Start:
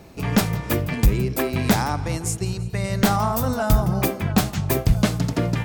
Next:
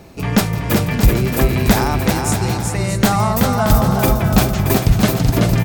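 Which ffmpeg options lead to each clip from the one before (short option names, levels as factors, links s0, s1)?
-af "aecho=1:1:380|627|787.6|891.9|959.7:0.631|0.398|0.251|0.158|0.1,volume=1.58"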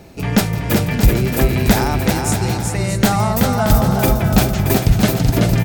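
-af "equalizer=f=1100:w=5.3:g=-5.5"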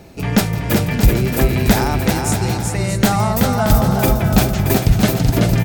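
-ar 44100 -c:a aac -b:a 160k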